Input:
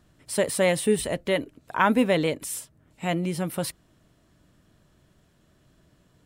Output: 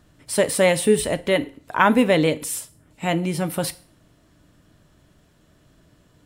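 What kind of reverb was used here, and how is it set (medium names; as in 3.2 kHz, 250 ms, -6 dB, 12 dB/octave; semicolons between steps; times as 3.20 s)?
FDN reverb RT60 0.42 s, low-frequency decay 0.9×, high-frequency decay 1×, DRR 12 dB; trim +4.5 dB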